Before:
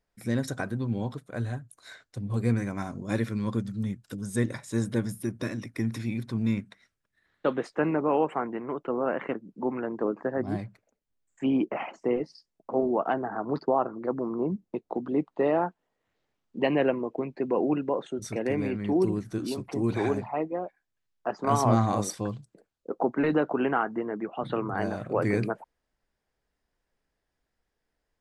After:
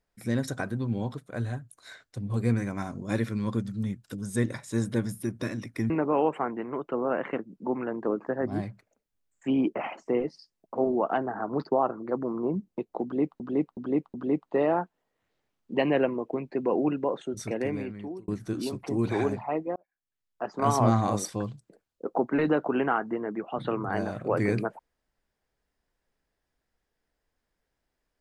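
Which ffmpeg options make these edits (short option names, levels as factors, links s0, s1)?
-filter_complex "[0:a]asplit=7[s0][s1][s2][s3][s4][s5][s6];[s0]atrim=end=5.902[s7];[s1]atrim=start=7.858:end=15.362[s8];[s2]atrim=start=14.988:end=15.362[s9];[s3]atrim=start=14.988:end=15.362[s10];[s4]atrim=start=14.988:end=19.13,asetpts=PTS-STARTPTS,afade=t=out:st=3.372:d=0.77[s11];[s5]atrim=start=19.13:end=20.61,asetpts=PTS-STARTPTS,afade=t=in:d=0.004:c=hsin,afade=t=out:st=1.476:d=0.004:c=hsin[s12];[s6]atrim=start=20.61,asetpts=PTS-STARTPTS,afade=t=in:d=0.92[s13];[s7][s8]acrossfade=d=0.004:c1=hsin:c2=hsin[s14];[s14][s9]acrossfade=d=0.004:c1=hsin:c2=hsin[s15];[s15][s10]acrossfade=d=0.004:c1=hsin:c2=hsin[s16];[s11][s12][s13]concat=n=3:v=0:a=1[s17];[s16][s17]acrossfade=d=0.004:c1=hsin:c2=hsin"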